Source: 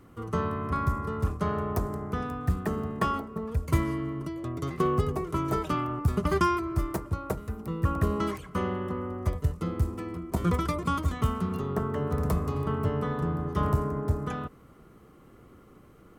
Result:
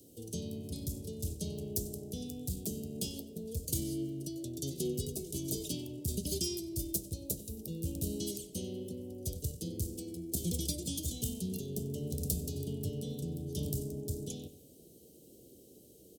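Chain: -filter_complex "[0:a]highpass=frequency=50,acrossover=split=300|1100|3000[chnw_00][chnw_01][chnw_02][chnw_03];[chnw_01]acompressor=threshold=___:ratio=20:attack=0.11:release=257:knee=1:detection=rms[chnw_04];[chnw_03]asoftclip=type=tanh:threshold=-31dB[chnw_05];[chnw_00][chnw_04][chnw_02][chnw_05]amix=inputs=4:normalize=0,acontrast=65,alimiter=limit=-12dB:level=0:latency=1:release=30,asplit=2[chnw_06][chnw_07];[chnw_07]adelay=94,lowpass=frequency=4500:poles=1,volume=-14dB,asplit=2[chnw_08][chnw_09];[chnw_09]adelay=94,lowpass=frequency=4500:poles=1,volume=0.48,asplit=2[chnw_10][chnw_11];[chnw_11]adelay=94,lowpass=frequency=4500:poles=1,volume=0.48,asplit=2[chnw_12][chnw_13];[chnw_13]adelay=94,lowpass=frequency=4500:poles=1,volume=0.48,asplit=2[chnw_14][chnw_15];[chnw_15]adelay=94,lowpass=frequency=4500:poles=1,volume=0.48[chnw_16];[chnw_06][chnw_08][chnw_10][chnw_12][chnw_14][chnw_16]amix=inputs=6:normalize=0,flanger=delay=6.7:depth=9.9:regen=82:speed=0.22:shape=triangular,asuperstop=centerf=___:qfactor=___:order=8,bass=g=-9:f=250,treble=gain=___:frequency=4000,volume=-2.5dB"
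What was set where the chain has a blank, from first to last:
-43dB, 1400, 0.51, 13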